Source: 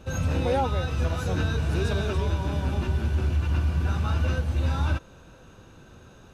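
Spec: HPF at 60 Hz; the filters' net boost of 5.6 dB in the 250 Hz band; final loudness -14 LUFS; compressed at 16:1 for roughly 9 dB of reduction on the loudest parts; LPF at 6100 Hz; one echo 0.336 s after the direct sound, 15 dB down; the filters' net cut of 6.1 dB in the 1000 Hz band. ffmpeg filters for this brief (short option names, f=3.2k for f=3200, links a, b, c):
-af "highpass=60,lowpass=6.1k,equalizer=f=250:t=o:g=8,equalizer=f=1k:t=o:g=-9,acompressor=threshold=-29dB:ratio=16,aecho=1:1:336:0.178,volume=20.5dB"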